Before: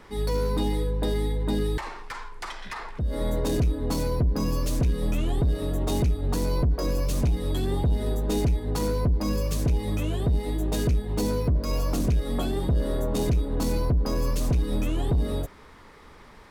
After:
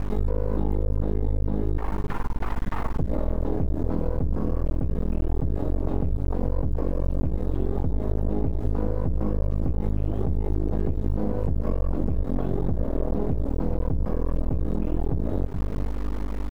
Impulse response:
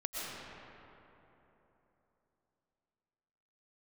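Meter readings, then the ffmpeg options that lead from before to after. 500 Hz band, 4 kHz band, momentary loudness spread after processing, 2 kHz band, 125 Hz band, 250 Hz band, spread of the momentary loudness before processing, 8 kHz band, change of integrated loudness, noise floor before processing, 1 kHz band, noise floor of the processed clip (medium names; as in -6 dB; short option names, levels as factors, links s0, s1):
-1.5 dB, under -15 dB, 3 LU, -6.5 dB, -0.5 dB, 0.0 dB, 4 LU, under -20 dB, -1.5 dB, -49 dBFS, -2.0 dB, -28 dBFS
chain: -filter_complex "[0:a]aemphasis=mode=reproduction:type=50fm,acrossover=split=3000[s0][s1];[s1]acompressor=threshold=0.00126:ratio=4:attack=1:release=60[s2];[s0][s2]amix=inputs=2:normalize=0,acrusher=bits=7:mix=0:aa=0.000001,aeval=exprs='val(0)+0.0141*(sin(2*PI*50*n/s)+sin(2*PI*2*50*n/s)/2+sin(2*PI*3*50*n/s)/3+sin(2*PI*4*50*n/s)/4+sin(2*PI*5*50*n/s)/5)':c=same,alimiter=limit=0.0668:level=0:latency=1:release=128,bandreject=f=60:t=h:w=6,bandreject=f=120:t=h:w=6,bandreject=f=180:t=h:w=6,bandreject=f=240:t=h:w=6,bandreject=f=300:t=h:w=6,bandreject=f=360:t=h:w=6,bandreject=f=420:t=h:w=6,aecho=1:1:424:0.224,aeval=exprs='max(val(0),0)':c=same,tiltshelf=f=1300:g=9.5,acompressor=threshold=0.0501:ratio=6,volume=2.24"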